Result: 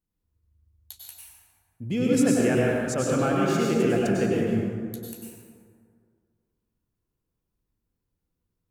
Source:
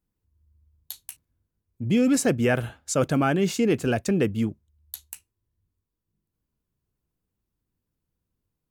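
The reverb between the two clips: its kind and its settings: plate-style reverb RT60 2.1 s, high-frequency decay 0.45×, pre-delay 85 ms, DRR -4.5 dB; gain -6 dB

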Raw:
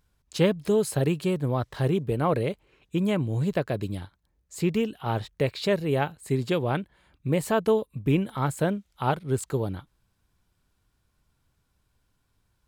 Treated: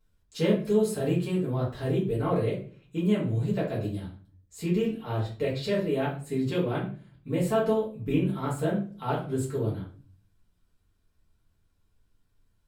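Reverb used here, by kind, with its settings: shoebox room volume 33 m³, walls mixed, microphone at 1.5 m; gain -13 dB

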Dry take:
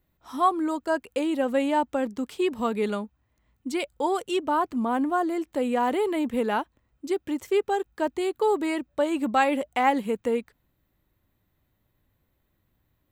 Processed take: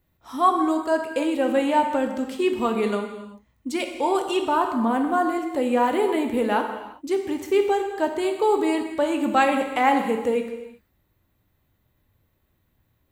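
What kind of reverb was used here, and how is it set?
non-linear reverb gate 0.41 s falling, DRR 3.5 dB; gain +2 dB

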